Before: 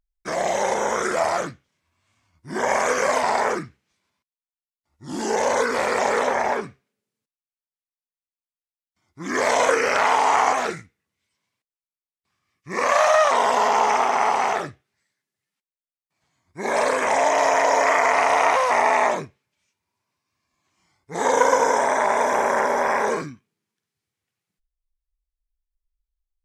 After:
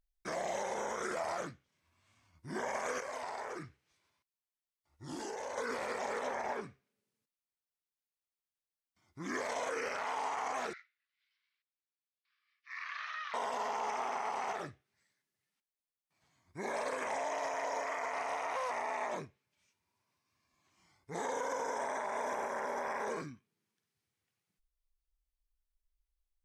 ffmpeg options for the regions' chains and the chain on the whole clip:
-filter_complex "[0:a]asettb=1/sr,asplit=3[s0][s1][s2];[s0]atrim=end=3.004[s3];[s1]atrim=start=3:end=5.58,asetpts=PTS-STARTPTS,afade=t=in:d=0.004:c=qsin,afade=t=out:st=2.576:d=0.004:c=qsin,equalizer=f=210:t=o:w=0.33:g=-12.5,acompressor=threshold=0.0447:ratio=6:attack=3.2:release=140:knee=1:detection=peak[s4];[s2]atrim=start=5.576[s5];[s3][s4]acrossfade=d=0.004:c1=hsin:c2=qsin[s6];[s6][s5]acrossfade=d=0.004:c1=qsin:c2=hsin,asettb=1/sr,asplit=3[s7][s8][s9];[s7]atrim=end=10.734[s10];[s8]atrim=start=10.73:end=13.34,asetpts=PTS-STARTPTS,afade=t=in:d=0.004:c=qsin,afade=t=out:st=2.606:d=0.004:c=qsin,asuperpass=centerf=2500:order=8:qfactor=0.74,acompressor=threshold=0.0224:ratio=2:attack=3.2:release=140:knee=1:detection=peak[s11];[s9]atrim=start=13.336[s12];[s10][s11]acrossfade=d=0.004:c1=hsin:c2=qsin[s13];[s13][s12]acrossfade=d=0.004:c1=qsin:c2=hsin,bandreject=f=7200:w=23,alimiter=limit=0.2:level=0:latency=1:release=50,acompressor=threshold=0.00355:ratio=1.5,volume=0.708"

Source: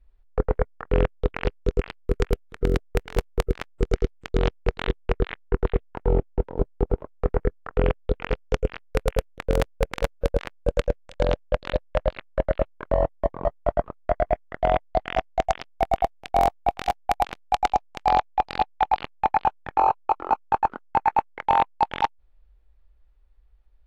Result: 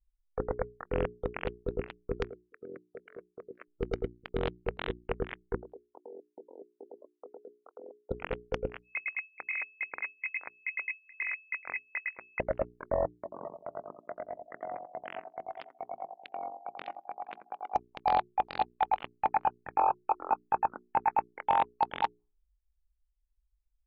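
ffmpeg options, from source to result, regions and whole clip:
-filter_complex "[0:a]asettb=1/sr,asplit=3[s0][s1][s2];[s0]atrim=end=2.284[s3];[s1]atrim=start=2.28:end=3.68,asetpts=PTS-STARTPTS,afade=t=in:d=0.004:c=qsin,afade=t=out:st=1.396:d=0.004:c=qsin,highpass=270,lowpass=2400,equalizer=f=830:t=o:w=0.48:g=-12.5,acompressor=threshold=0.0158:ratio=3:attack=3.2:release=140:knee=1:detection=peak[s4];[s2]atrim=start=3.676[s5];[s3][s4]acrossfade=d=0.004:c1=hsin:c2=qsin[s6];[s6][s5]acrossfade=d=0.004:c1=qsin:c2=hsin,asettb=1/sr,asplit=3[s7][s8][s9];[s7]atrim=end=5.554[s10];[s8]atrim=start=5.55:end=8.11,asetpts=PTS-STARTPTS,afade=t=in:d=0.004:c=qsin,afade=t=out:st=2.556:d=0.004:c=qsin,highpass=f=290:w=0.5412,highpass=f=290:w=1.3066,equalizer=f=2200:w=0.47:g=-15,acompressor=threshold=0.0158:ratio=8:attack=3.2:release=140:knee=1:detection=peak[s11];[s9]atrim=start=8.106[s12];[s10][s11]acrossfade=d=0.004:c1=hsin:c2=qsin[s13];[s13][s12]acrossfade=d=0.004:c1=qsin:c2=hsin,asettb=1/sr,asplit=3[s14][s15][s16];[s14]atrim=end=8.824[s17];[s15]atrim=start=8.82:end=12.4,asetpts=PTS-STARTPTS,afade=t=in:d=0.004:c=qsin,afade=t=out:st=3.576:d=0.004:c=qsin,lowpass=f=2200:t=q:w=0.5098,lowpass=f=2200:t=q:w=0.6013,lowpass=f=2200:t=q:w=0.9,lowpass=f=2200:t=q:w=2.563,afreqshift=-2600,acompressor=threshold=0.0708:ratio=12:attack=3.2:release=140:knee=1:detection=peak[s18];[s16]atrim=start=12.396[s19];[s17][s18]acrossfade=d=0.004:c1=hsin:c2=qsin[s20];[s20][s19]acrossfade=d=0.004:c1=qsin:c2=hsin,asettb=1/sr,asplit=3[s21][s22][s23];[s21]atrim=end=13.114[s24];[s22]atrim=start=13.11:end=17.75,asetpts=PTS-STARTPTS,afade=t=in:d=0.004:c=qsin,afade=t=out:st=4.636:d=0.004:c=qsin,highpass=160,lowpass=5700,acompressor=threshold=0.0355:ratio=8:attack=3.2:release=140:knee=1:detection=peak,asplit=2[s25][s26];[s26]adelay=87,lowpass=f=1700:p=1,volume=0.562,asplit=2[s27][s28];[s28]adelay=87,lowpass=f=1700:p=1,volume=0.41,asplit=2[s29][s30];[s30]adelay=87,lowpass=f=1700:p=1,volume=0.41,asplit=2[s31][s32];[s32]adelay=87,lowpass=f=1700:p=1,volume=0.41,asplit=2[s33][s34];[s34]adelay=87,lowpass=f=1700:p=1,volume=0.41[s35];[s25][s27][s29][s31][s33][s35]amix=inputs=6:normalize=0,atrim=end_sample=204624[s36];[s23]atrim=start=17.746[s37];[s24][s36]acrossfade=d=0.004:c1=hsin:c2=qsin[s38];[s38][s37]acrossfade=d=0.004:c1=qsin:c2=hsin,afftdn=nr=28:nf=-42,lowshelf=f=82:g=-12,bandreject=f=60:t=h:w=6,bandreject=f=120:t=h:w=6,bandreject=f=180:t=h:w=6,bandreject=f=240:t=h:w=6,bandreject=f=300:t=h:w=6,bandreject=f=360:t=h:w=6,bandreject=f=420:t=h:w=6,volume=0.473"

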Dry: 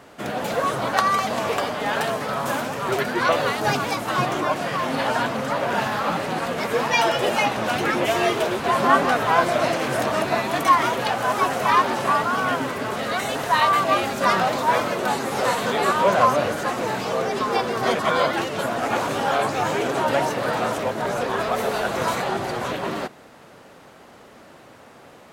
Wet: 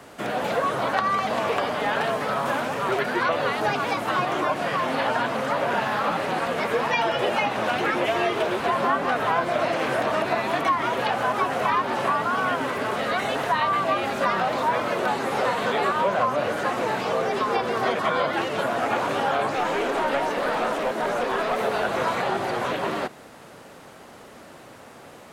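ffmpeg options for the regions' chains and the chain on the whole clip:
-filter_complex "[0:a]asettb=1/sr,asplit=3[s0][s1][s2];[s0]atrim=end=19.554[s3];[s1]atrim=start=19.55:end=21.61,asetpts=PTS-STARTPTS,afade=t=in:d=0.004:c=qsin,afade=t=out:st=2.056:d=0.004:c=qsin,highpass=f=170:w=0.5412,highpass=f=170:w=1.3066,aeval=exprs='clip(val(0),-1,0.0708)':c=same[s4];[s2]atrim=start=21.606[s5];[s3][s4]acrossfade=d=0.004:c1=hsin:c2=qsin[s6];[s6][s5]acrossfade=d=0.004:c1=qsin:c2=hsin,acrossover=split=4000[s7][s8];[s8]acompressor=threshold=0.00316:ratio=4:attack=1:release=60[s9];[s7][s9]amix=inputs=2:normalize=0,equalizer=f=10000:t=o:w=0.96:g=4,acrossover=split=130|330[s10][s11][s12];[s10]acompressor=threshold=0.00355:ratio=4[s13];[s11]acompressor=threshold=0.0126:ratio=4[s14];[s12]acompressor=threshold=0.0794:ratio=4[s15];[s13][s14][s15]amix=inputs=3:normalize=0,volume=1.19"

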